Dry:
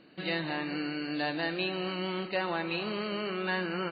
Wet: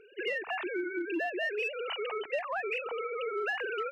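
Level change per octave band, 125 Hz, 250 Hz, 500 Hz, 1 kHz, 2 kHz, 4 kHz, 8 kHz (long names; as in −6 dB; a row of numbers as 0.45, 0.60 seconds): below −35 dB, −6.5 dB, +1.5 dB, −1.0 dB, +1.0 dB, −5.5 dB, can't be measured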